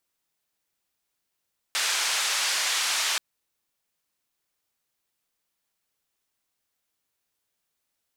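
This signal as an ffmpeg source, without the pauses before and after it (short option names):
-f lavfi -i "anoisesrc=c=white:d=1.43:r=44100:seed=1,highpass=f=990,lowpass=f=6500,volume=-15.4dB"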